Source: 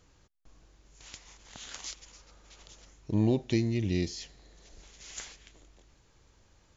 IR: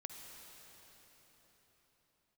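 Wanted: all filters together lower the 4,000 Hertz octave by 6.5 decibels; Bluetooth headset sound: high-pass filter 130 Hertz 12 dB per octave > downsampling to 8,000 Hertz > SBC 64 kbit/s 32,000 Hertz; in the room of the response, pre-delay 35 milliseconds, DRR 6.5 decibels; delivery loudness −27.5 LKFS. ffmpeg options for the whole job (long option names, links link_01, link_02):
-filter_complex "[0:a]equalizer=frequency=4000:width_type=o:gain=-8.5,asplit=2[link_01][link_02];[1:a]atrim=start_sample=2205,adelay=35[link_03];[link_02][link_03]afir=irnorm=-1:irlink=0,volume=-3dB[link_04];[link_01][link_04]amix=inputs=2:normalize=0,highpass=130,aresample=8000,aresample=44100,volume=4dB" -ar 32000 -c:a sbc -b:a 64k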